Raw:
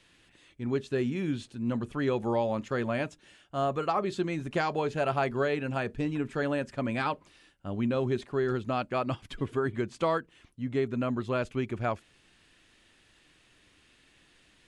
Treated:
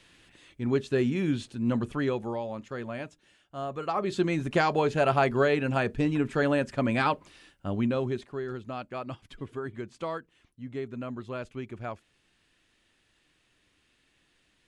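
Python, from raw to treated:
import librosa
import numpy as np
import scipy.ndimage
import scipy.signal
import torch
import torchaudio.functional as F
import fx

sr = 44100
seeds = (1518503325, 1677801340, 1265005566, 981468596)

y = fx.gain(x, sr, db=fx.line((1.9, 3.5), (2.39, -6.0), (3.69, -6.0), (4.23, 4.5), (7.67, 4.5), (8.44, -6.5)))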